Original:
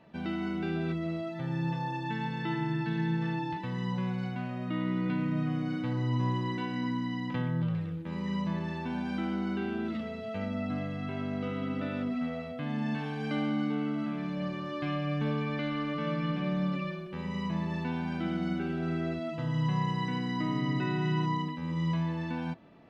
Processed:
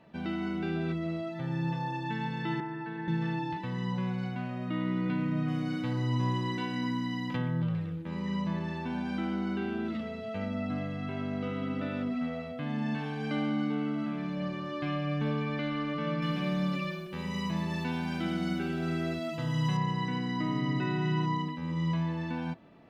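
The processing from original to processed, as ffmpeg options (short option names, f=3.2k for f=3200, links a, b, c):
-filter_complex "[0:a]asettb=1/sr,asplit=3[a][b][c];[a]atrim=end=2.604[d];[b]atrim=start=2.6:end=3.08,asetpts=PTS-STARTPTS,afade=t=in:d=0.004:c=qsin,afade=t=out:st=0.476:d=0.004:c=qsin,acrossover=split=330 2100:gain=0.224 1 0.178[e][f][g];[e][f][g]amix=inputs=3:normalize=0[h];[c]atrim=start=3.076[i];[d][h]acrossfade=d=0.004:c1=hsin:c2=qsin[j];[j][i]acrossfade=d=0.004:c1=qsin:c2=hsin,asettb=1/sr,asplit=3[k][l][m];[k]atrim=end=5.484[n];[l]atrim=start=5.48:end=7.37,asetpts=PTS-STARTPTS,afade=t=in:d=0.004:c=qsin,afade=t=out:st=1.886:d=0.004:c=qsin,highshelf=f=4.3k:g=9.5[o];[m]atrim=start=7.366[p];[n][o]acrossfade=d=0.004:c1=hsin:c2=qsin[q];[q][p]acrossfade=d=0.004:c1=qsin:c2=hsin,asettb=1/sr,asplit=3[r][s][t];[r]atrim=end=16.224[u];[s]atrim=start=16.22:end=19.77,asetpts=PTS-STARTPTS,afade=t=in:d=0.004:c=qsin,afade=t=out:st=3.546:d=0.004:c=qsin,aemphasis=mode=production:type=75kf[v];[t]atrim=start=19.766[w];[u][v]acrossfade=d=0.004:c1=hsin:c2=qsin[x];[x][w]acrossfade=d=0.004:c1=qsin:c2=hsin"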